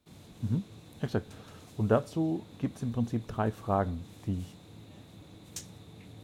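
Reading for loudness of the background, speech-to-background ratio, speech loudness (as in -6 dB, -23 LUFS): -50.5 LUFS, 17.5 dB, -33.0 LUFS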